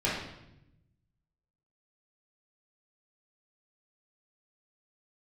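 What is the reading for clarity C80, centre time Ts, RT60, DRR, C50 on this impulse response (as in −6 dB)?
5.0 dB, 58 ms, 0.85 s, −8.5 dB, 1.5 dB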